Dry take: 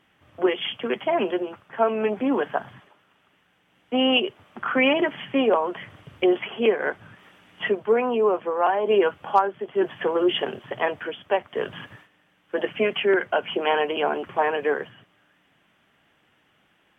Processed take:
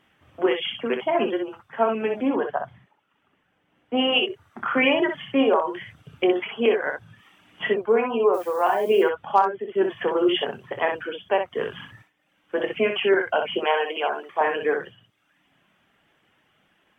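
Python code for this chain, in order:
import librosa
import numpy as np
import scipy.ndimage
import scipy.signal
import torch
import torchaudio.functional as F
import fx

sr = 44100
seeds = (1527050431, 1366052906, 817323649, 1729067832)

y = fx.high_shelf(x, sr, hz=2400.0, db=-10.5, at=(2.29, 3.97))
y = fx.dmg_noise_colour(y, sr, seeds[0], colour='blue', level_db=-50.0, at=(8.33, 9.02), fade=0.02)
y = fx.dereverb_blind(y, sr, rt60_s=0.78)
y = fx.highpass(y, sr, hz=460.0, slope=12, at=(13.59, 14.41))
y = fx.room_early_taps(y, sr, ms=(26, 63), db=(-11.0, -6.0))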